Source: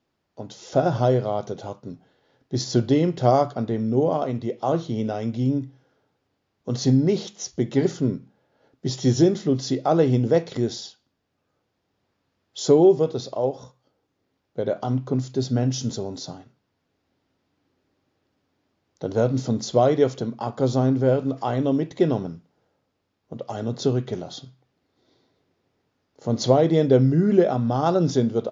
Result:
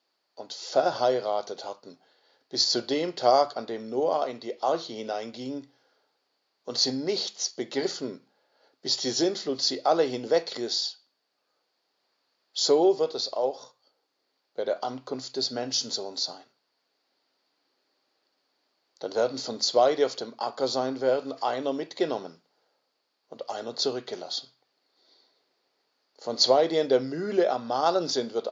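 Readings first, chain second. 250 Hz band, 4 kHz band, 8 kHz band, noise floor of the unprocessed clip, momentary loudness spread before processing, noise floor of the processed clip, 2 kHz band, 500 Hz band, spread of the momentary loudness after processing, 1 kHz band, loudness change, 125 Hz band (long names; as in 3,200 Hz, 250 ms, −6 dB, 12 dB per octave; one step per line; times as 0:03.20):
−11.0 dB, +8.0 dB, can't be measured, −75 dBFS, 17 LU, −77 dBFS, 0.0 dB, −4.0 dB, 14 LU, −1.0 dB, −4.5 dB, −23.0 dB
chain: high-pass filter 520 Hz 12 dB per octave
parametric band 4,500 Hz +13.5 dB 0.32 octaves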